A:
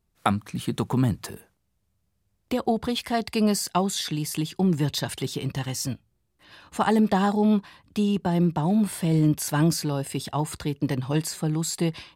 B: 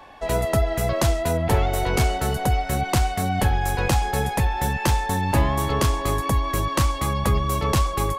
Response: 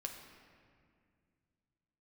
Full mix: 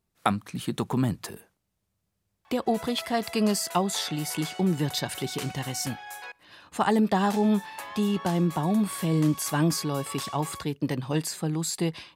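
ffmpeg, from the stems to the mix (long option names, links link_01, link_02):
-filter_complex "[0:a]volume=-1dB,asplit=2[link_01][link_02];[1:a]highpass=1000,adelay=2450,volume=-11dB,asplit=3[link_03][link_04][link_05];[link_03]atrim=end=6.32,asetpts=PTS-STARTPTS,afade=type=out:start_time=6.316:duration=0.004:curve=hsin[link_06];[link_04]atrim=start=6.32:end=7.22,asetpts=PTS-STARTPTS,volume=0[link_07];[link_05]atrim=start=7.22,asetpts=PTS-STARTPTS,afade=type=in:duration=0.004:curve=hsin[link_08];[link_06][link_07][link_08]concat=n=3:v=0:a=1,asplit=2[link_09][link_10];[link_10]volume=-17.5dB[link_11];[link_02]apad=whole_len=469149[link_12];[link_09][link_12]sidechaincompress=threshold=-24dB:ratio=8:attack=16:release=156[link_13];[2:a]atrim=start_sample=2205[link_14];[link_11][link_14]afir=irnorm=-1:irlink=0[link_15];[link_01][link_13][link_15]amix=inputs=3:normalize=0,lowshelf=frequency=78:gain=-11.5"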